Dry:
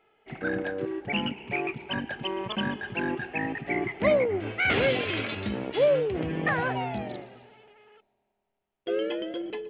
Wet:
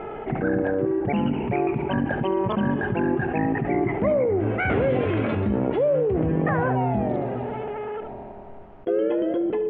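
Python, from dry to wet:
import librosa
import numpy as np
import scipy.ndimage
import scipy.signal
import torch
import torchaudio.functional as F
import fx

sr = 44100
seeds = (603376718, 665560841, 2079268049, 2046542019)

y = scipy.signal.sosfilt(scipy.signal.butter(2, 1100.0, 'lowpass', fs=sr, output='sos'), x)
y = fx.low_shelf(y, sr, hz=200.0, db=4.5)
y = y + 10.0 ** (-14.5 / 20.0) * np.pad(y, (int(70 * sr / 1000.0), 0))[:len(y)]
y = fx.env_flatten(y, sr, amount_pct=70)
y = y * 10.0 ** (-1.0 / 20.0)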